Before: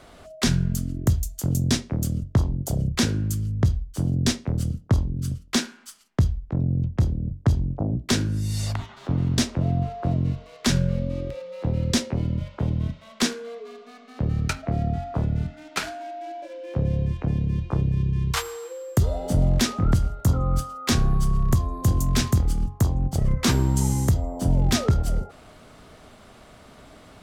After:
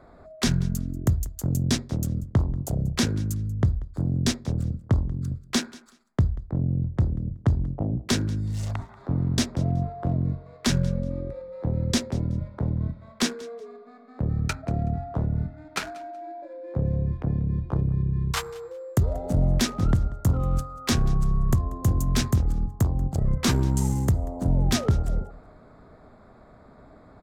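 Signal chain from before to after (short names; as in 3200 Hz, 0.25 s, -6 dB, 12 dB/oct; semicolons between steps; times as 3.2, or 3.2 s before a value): Wiener smoothing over 15 samples; on a send: feedback echo 0.187 s, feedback 21%, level -21.5 dB; on the sum: gain -1.5 dB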